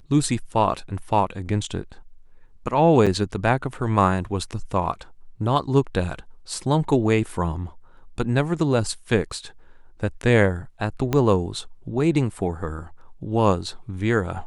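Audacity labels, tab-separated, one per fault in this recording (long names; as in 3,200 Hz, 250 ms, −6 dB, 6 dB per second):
3.060000	3.070000	drop-out 6.5 ms
11.130000	11.130000	click −9 dBFS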